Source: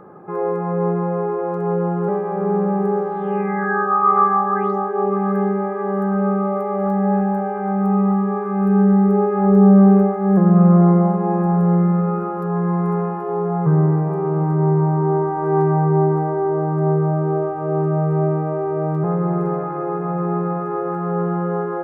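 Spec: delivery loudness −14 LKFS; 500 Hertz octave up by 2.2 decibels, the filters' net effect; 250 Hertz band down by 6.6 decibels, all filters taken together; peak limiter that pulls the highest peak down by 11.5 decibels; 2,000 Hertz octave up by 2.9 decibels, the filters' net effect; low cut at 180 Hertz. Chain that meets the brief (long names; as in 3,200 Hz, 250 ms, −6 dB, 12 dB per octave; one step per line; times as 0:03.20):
high-pass filter 180 Hz
parametric band 250 Hz −9 dB
parametric band 500 Hz +6.5 dB
parametric band 2,000 Hz +3.5 dB
level +8.5 dB
brickwall limiter −5.5 dBFS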